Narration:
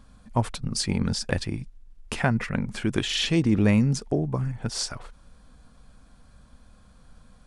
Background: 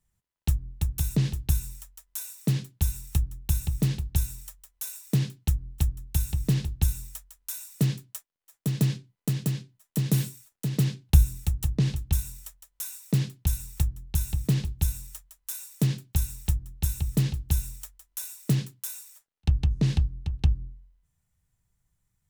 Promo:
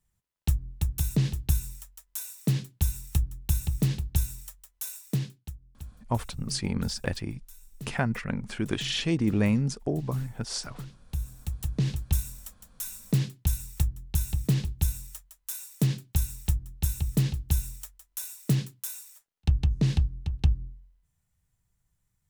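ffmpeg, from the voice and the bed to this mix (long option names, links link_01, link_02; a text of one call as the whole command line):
ffmpeg -i stem1.wav -i stem2.wav -filter_complex "[0:a]adelay=5750,volume=-4dB[link_01];[1:a]volume=16.5dB,afade=type=out:start_time=4.92:duration=0.61:silence=0.141254,afade=type=in:start_time=11.11:duration=0.93:silence=0.141254[link_02];[link_01][link_02]amix=inputs=2:normalize=0" out.wav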